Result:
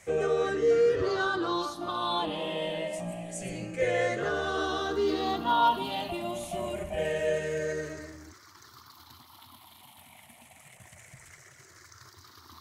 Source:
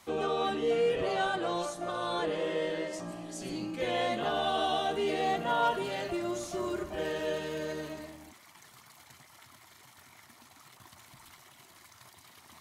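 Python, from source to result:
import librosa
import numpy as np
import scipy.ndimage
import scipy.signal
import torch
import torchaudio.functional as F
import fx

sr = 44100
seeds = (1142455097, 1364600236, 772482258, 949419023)

y = fx.spec_ripple(x, sr, per_octave=0.52, drift_hz=-0.27, depth_db=14)
y = fx.peak_eq(y, sr, hz=86.0, db=7.0, octaves=0.79)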